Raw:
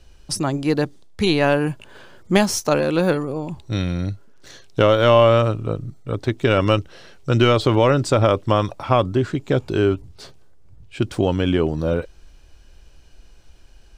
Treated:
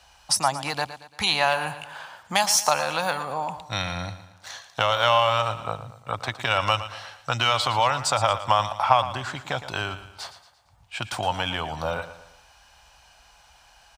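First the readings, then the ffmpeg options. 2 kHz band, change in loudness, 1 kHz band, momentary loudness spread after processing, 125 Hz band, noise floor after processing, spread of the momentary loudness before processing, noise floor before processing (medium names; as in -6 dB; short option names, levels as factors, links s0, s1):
0.0 dB, -4.5 dB, +1.5 dB, 17 LU, -12.5 dB, -56 dBFS, 12 LU, -47 dBFS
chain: -filter_complex "[0:a]highpass=46,acrossover=split=120|3000[s0][s1][s2];[s1]acompressor=threshold=0.0891:ratio=6[s3];[s0][s3][s2]amix=inputs=3:normalize=0,lowshelf=f=550:t=q:w=3:g=-13.5,aecho=1:1:114|228|342|456:0.224|0.0985|0.0433|0.0191,volume=1.58"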